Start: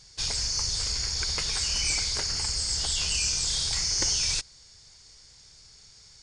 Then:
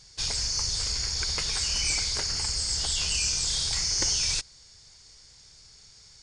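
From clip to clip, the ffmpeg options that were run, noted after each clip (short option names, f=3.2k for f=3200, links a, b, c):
-af anull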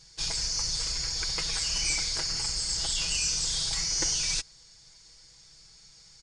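-af "aecho=1:1:6.1:0.65,volume=-3dB"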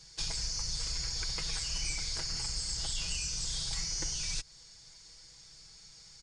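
-filter_complex "[0:a]acrossover=split=160[a][b];[b]acompressor=threshold=-34dB:ratio=6[c];[a][c]amix=inputs=2:normalize=0"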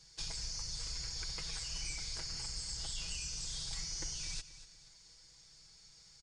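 -af "aecho=1:1:240|480|720:0.188|0.064|0.0218,volume=-6dB"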